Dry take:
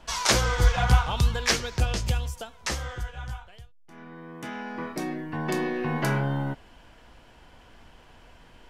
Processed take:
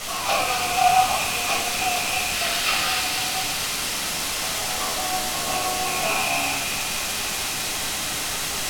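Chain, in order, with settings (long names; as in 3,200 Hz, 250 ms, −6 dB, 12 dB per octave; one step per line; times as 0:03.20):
loose part that buzzes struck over −27 dBFS, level −19 dBFS
in parallel at −1.5 dB: downward compressor, threshold −32 dBFS, peak gain reduction 18 dB
on the sum: formant filter a
high-shelf EQ 2,500 Hz +11 dB
bit-depth reduction 6 bits, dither triangular
gain on a spectral selection 0:02.32–0:02.98, 1,200–5,300 Hz +8 dB
on a send: delay with a high-pass on its return 237 ms, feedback 81%, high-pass 2,600 Hz, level −3 dB
on the sum: rectangular room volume 760 cubic metres, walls furnished, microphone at 6.5 metres
linearly interpolated sample-rate reduction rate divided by 2×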